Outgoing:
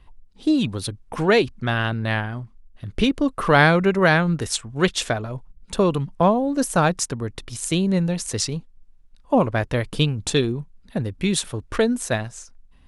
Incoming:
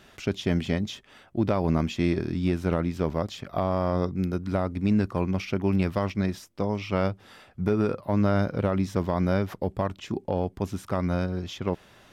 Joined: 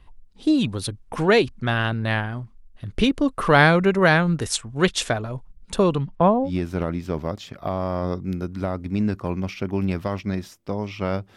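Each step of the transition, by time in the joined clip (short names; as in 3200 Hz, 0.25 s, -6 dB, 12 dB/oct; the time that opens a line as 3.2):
outgoing
5.93–6.51 LPF 6600 Hz -> 1300 Hz
6.47 switch to incoming from 2.38 s, crossfade 0.08 s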